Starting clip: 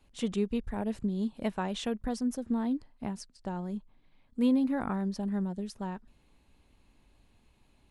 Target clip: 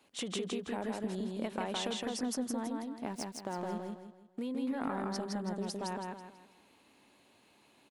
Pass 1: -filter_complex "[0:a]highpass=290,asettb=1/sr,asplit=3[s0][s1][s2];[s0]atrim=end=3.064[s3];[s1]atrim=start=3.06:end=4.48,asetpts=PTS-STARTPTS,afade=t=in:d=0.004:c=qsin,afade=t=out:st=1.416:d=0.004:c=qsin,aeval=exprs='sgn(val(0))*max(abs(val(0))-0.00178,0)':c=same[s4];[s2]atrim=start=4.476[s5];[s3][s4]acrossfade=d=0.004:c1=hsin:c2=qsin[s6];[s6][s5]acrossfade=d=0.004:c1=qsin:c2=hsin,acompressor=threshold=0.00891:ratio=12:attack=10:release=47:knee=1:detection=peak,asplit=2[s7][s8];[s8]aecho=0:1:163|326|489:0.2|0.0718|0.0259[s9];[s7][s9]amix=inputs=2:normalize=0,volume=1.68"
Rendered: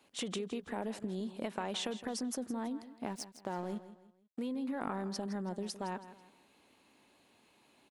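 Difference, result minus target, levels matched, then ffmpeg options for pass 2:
echo-to-direct -11.5 dB
-filter_complex "[0:a]highpass=290,asettb=1/sr,asplit=3[s0][s1][s2];[s0]atrim=end=3.064[s3];[s1]atrim=start=3.06:end=4.48,asetpts=PTS-STARTPTS,afade=t=in:d=0.004:c=qsin,afade=t=out:st=1.416:d=0.004:c=qsin,aeval=exprs='sgn(val(0))*max(abs(val(0))-0.00178,0)':c=same[s4];[s2]atrim=start=4.476[s5];[s3][s4]acrossfade=d=0.004:c1=hsin:c2=qsin[s6];[s6][s5]acrossfade=d=0.004:c1=qsin:c2=hsin,acompressor=threshold=0.00891:ratio=12:attack=10:release=47:knee=1:detection=peak,asplit=2[s7][s8];[s8]aecho=0:1:163|326|489|652|815:0.75|0.27|0.0972|0.035|0.0126[s9];[s7][s9]amix=inputs=2:normalize=0,volume=1.68"

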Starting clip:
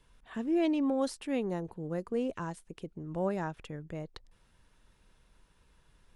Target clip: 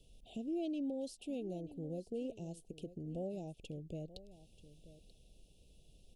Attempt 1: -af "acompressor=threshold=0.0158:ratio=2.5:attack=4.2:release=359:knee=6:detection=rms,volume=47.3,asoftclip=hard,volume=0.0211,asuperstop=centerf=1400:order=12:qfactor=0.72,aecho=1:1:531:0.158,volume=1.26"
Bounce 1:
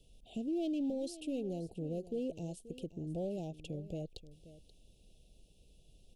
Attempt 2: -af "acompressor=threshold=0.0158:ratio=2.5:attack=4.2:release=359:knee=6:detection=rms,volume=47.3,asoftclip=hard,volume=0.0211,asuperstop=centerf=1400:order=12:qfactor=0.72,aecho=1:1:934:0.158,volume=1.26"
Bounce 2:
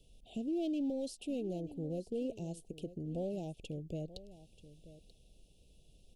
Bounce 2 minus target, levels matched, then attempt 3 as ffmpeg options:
compression: peak gain reduction -4 dB
-af "acompressor=threshold=0.00708:ratio=2.5:attack=4.2:release=359:knee=6:detection=rms,volume=47.3,asoftclip=hard,volume=0.0211,asuperstop=centerf=1400:order=12:qfactor=0.72,aecho=1:1:934:0.158,volume=1.26"

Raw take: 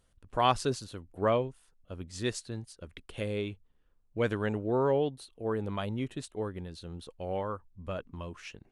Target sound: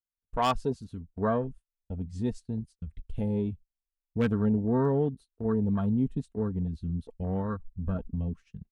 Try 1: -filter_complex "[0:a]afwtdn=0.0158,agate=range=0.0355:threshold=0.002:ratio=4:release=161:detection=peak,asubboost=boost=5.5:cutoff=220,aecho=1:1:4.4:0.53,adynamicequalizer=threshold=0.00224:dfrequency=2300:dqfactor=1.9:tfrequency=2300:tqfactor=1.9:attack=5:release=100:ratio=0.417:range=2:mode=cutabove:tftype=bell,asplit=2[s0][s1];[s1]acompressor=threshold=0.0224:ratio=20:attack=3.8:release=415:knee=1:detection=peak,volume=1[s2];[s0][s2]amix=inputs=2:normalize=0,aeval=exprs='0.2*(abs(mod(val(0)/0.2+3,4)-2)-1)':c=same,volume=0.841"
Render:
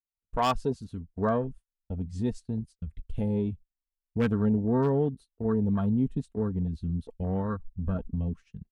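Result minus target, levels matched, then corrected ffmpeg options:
compression: peak gain reduction -5.5 dB
-filter_complex "[0:a]afwtdn=0.0158,agate=range=0.0355:threshold=0.002:ratio=4:release=161:detection=peak,asubboost=boost=5.5:cutoff=220,aecho=1:1:4.4:0.53,adynamicequalizer=threshold=0.00224:dfrequency=2300:dqfactor=1.9:tfrequency=2300:tqfactor=1.9:attack=5:release=100:ratio=0.417:range=2:mode=cutabove:tftype=bell,asplit=2[s0][s1];[s1]acompressor=threshold=0.0112:ratio=20:attack=3.8:release=415:knee=1:detection=peak,volume=1[s2];[s0][s2]amix=inputs=2:normalize=0,aeval=exprs='0.2*(abs(mod(val(0)/0.2+3,4)-2)-1)':c=same,volume=0.841"

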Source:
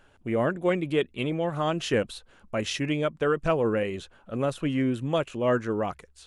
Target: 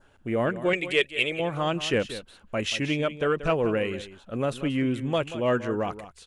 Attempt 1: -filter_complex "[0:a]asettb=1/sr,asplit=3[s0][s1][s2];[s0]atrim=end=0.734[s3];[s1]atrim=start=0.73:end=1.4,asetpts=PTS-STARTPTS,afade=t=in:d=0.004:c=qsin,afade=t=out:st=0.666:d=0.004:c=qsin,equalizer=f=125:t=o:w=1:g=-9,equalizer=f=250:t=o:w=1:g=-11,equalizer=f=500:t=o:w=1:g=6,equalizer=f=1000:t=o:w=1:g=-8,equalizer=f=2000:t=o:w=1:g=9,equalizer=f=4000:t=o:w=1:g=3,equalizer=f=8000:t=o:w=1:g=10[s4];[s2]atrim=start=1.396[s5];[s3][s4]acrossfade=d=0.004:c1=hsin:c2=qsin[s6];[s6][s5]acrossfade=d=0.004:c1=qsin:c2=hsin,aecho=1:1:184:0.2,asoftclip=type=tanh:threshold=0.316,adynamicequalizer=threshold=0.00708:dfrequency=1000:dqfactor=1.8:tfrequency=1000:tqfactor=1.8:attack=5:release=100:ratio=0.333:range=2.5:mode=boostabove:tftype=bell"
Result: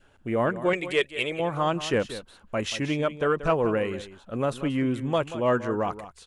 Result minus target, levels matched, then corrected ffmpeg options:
1 kHz band +3.0 dB
-filter_complex "[0:a]asettb=1/sr,asplit=3[s0][s1][s2];[s0]atrim=end=0.734[s3];[s1]atrim=start=0.73:end=1.4,asetpts=PTS-STARTPTS,afade=t=in:d=0.004:c=qsin,afade=t=out:st=0.666:d=0.004:c=qsin,equalizer=f=125:t=o:w=1:g=-9,equalizer=f=250:t=o:w=1:g=-11,equalizer=f=500:t=o:w=1:g=6,equalizer=f=1000:t=o:w=1:g=-8,equalizer=f=2000:t=o:w=1:g=9,equalizer=f=4000:t=o:w=1:g=3,equalizer=f=8000:t=o:w=1:g=10[s4];[s2]atrim=start=1.396[s5];[s3][s4]acrossfade=d=0.004:c1=hsin:c2=qsin[s6];[s6][s5]acrossfade=d=0.004:c1=qsin:c2=hsin,aecho=1:1:184:0.2,asoftclip=type=tanh:threshold=0.316,adynamicequalizer=threshold=0.00708:dfrequency=2700:dqfactor=1.8:tfrequency=2700:tqfactor=1.8:attack=5:release=100:ratio=0.333:range=2.5:mode=boostabove:tftype=bell"

